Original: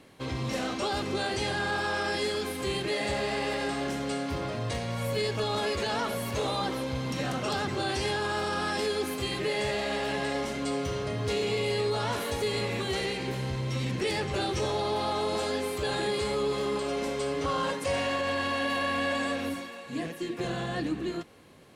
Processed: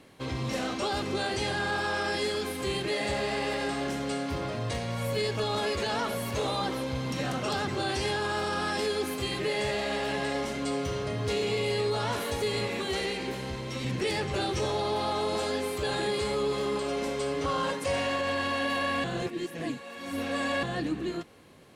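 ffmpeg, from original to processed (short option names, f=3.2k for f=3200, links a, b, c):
-filter_complex "[0:a]asettb=1/sr,asplit=3[a][b][c];[a]atrim=end=12.674[d];[b]atrim=start=12.67:end=13.85,asetpts=PTS-STARTPTS,afade=t=in:d=0.004:c=qsin,afade=t=out:st=1.176:d=0.004:c=qsin,equalizer=f=120:t=o:w=0.39:g=-12[e];[c]atrim=start=13.846[f];[d][e]acrossfade=d=0.004:c1=hsin:c2=qsin[g];[g][f]acrossfade=d=0.004:c1=qsin:c2=hsin,asplit=3[h][i][j];[h]atrim=end=19.042[k];[i]atrim=start=19.038:end=20.632,asetpts=PTS-STARTPTS,areverse[l];[j]atrim=start=20.628[m];[k][l]acrossfade=d=0.004:c1=hsin:c2=hsin[n];[n][m]acrossfade=d=0.004:c1=hsin:c2=hsin"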